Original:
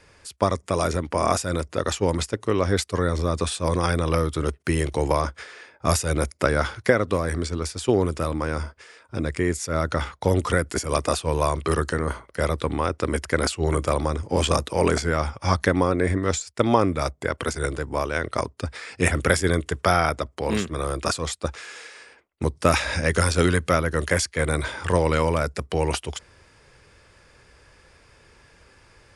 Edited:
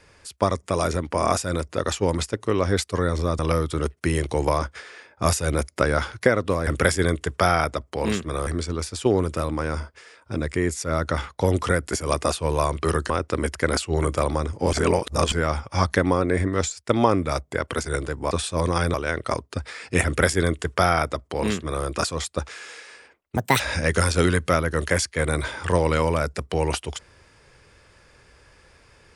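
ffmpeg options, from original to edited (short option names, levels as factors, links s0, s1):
-filter_complex "[0:a]asplit=11[s0][s1][s2][s3][s4][s5][s6][s7][s8][s9][s10];[s0]atrim=end=3.392[s11];[s1]atrim=start=4.018:end=7.302[s12];[s2]atrim=start=19.118:end=20.922[s13];[s3]atrim=start=7.298:end=11.932[s14];[s4]atrim=start=12.798:end=14.432[s15];[s5]atrim=start=14.428:end=15.022,asetpts=PTS-STARTPTS,areverse[s16];[s6]atrim=start=15.018:end=18.012[s17];[s7]atrim=start=3.388:end=4.022[s18];[s8]atrim=start=18.008:end=22.444[s19];[s9]atrim=start=22.44:end=22.8,asetpts=PTS-STARTPTS,asetrate=69678,aresample=44100,atrim=end_sample=10048,asetpts=PTS-STARTPTS[s20];[s10]atrim=start=22.796[s21];[s11][s12]acrossfade=d=0.004:c1=hsin:c2=hsin[s22];[s22][s13]acrossfade=d=0.004:c1=hsin:c2=hsin[s23];[s23][s14]acrossfade=d=0.004:c1=hsin:c2=hsin[s24];[s24][s15]acrossfade=d=0.004:c1=hsin:c2=hsin[s25];[s25][s16]acrossfade=d=0.004:c1=hsin:c2=hsin[s26];[s26][s17]acrossfade=d=0.004:c1=hsin:c2=hsin[s27];[s27][s18]acrossfade=d=0.004:c1=hsin:c2=hsin[s28];[s28][s19]acrossfade=d=0.004:c1=hsin:c2=hsin[s29];[s29][s20]acrossfade=d=0.004:c1=hsin:c2=hsin[s30];[s30][s21]acrossfade=d=0.004:c1=hsin:c2=hsin"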